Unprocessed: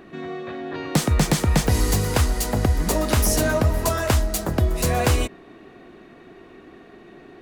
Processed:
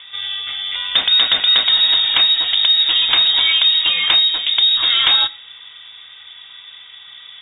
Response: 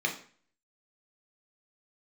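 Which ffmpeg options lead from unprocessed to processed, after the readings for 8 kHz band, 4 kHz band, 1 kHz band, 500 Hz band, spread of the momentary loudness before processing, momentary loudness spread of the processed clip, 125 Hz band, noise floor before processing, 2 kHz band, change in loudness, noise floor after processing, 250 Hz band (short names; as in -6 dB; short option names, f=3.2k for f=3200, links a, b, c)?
under -40 dB, +23.0 dB, -1.5 dB, under -10 dB, 12 LU, 10 LU, under -25 dB, -47 dBFS, +8.0 dB, +9.5 dB, -40 dBFS, under -15 dB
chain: -filter_complex "[0:a]lowpass=f=3.2k:t=q:w=0.5098,lowpass=f=3.2k:t=q:w=0.6013,lowpass=f=3.2k:t=q:w=0.9,lowpass=f=3.2k:t=q:w=2.563,afreqshift=-3800,asplit=2[a][b];[1:a]atrim=start_sample=2205[c];[b][c]afir=irnorm=-1:irlink=0,volume=-21dB[d];[a][d]amix=inputs=2:normalize=0,acrossover=split=3000[e][f];[f]acompressor=threshold=-22dB:ratio=4:attack=1:release=60[g];[e][g]amix=inputs=2:normalize=0,volume=8dB"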